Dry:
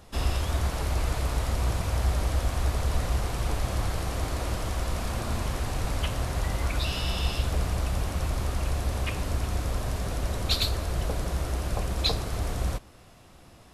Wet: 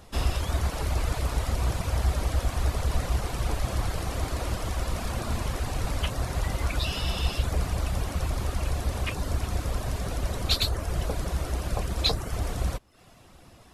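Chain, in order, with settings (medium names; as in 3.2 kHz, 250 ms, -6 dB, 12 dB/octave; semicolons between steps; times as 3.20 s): reverb removal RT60 0.57 s; trim +1.5 dB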